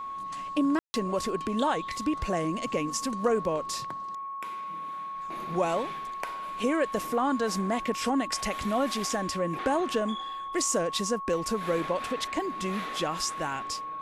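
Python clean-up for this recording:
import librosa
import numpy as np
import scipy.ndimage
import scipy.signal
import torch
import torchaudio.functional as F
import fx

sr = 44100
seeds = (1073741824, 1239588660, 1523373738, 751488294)

y = fx.notch(x, sr, hz=1100.0, q=30.0)
y = fx.fix_ambience(y, sr, seeds[0], print_start_s=3.92, print_end_s=4.42, start_s=0.79, end_s=0.94)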